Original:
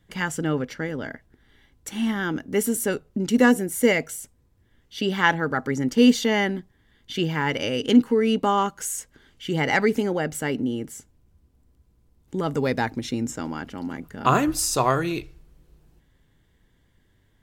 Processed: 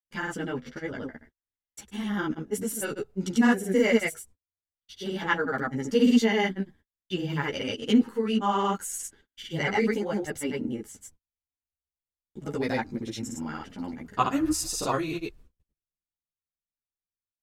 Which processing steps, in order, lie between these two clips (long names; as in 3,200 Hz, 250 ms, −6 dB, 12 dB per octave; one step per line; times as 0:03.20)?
granular cloud, pitch spread up and down by 0 semitones
noise gate −49 dBFS, range −41 dB
string-ensemble chorus